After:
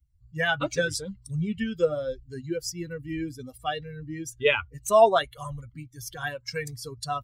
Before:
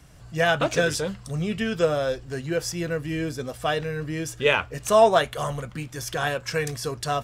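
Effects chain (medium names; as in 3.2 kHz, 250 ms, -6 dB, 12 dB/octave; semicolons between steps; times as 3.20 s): expander on every frequency bin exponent 2; 1.22–3.58 s: tape noise reduction on one side only encoder only; trim +1 dB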